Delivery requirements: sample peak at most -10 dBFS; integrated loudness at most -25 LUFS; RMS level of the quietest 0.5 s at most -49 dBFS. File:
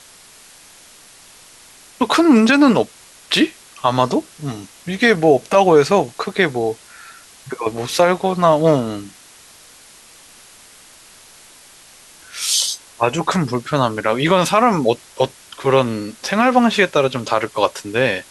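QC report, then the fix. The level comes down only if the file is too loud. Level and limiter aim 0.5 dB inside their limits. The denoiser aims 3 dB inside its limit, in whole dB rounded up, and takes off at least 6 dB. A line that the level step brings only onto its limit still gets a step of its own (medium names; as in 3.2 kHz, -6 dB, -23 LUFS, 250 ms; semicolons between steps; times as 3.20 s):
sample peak -2.0 dBFS: fail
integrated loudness -17.0 LUFS: fail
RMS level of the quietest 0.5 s -45 dBFS: fail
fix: trim -8.5 dB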